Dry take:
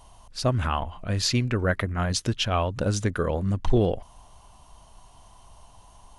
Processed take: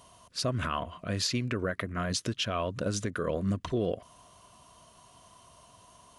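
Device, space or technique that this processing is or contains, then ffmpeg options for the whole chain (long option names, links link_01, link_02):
PA system with an anti-feedback notch: -af "highpass=130,asuperstop=centerf=830:order=4:qfactor=4.1,alimiter=limit=-19.5dB:level=0:latency=1:release=159"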